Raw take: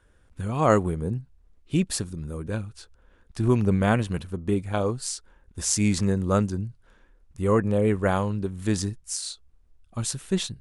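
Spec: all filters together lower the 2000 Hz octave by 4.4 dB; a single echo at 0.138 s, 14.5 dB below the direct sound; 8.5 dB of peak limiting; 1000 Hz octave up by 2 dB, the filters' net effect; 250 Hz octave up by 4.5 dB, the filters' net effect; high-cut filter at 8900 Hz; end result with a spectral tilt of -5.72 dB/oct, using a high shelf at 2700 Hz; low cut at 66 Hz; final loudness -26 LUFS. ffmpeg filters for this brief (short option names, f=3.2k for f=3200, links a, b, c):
-af "highpass=66,lowpass=8.9k,equalizer=f=250:t=o:g=6,equalizer=f=1k:t=o:g=5,equalizer=f=2k:t=o:g=-5.5,highshelf=f=2.7k:g=-8,alimiter=limit=-12dB:level=0:latency=1,aecho=1:1:138:0.188,volume=-1dB"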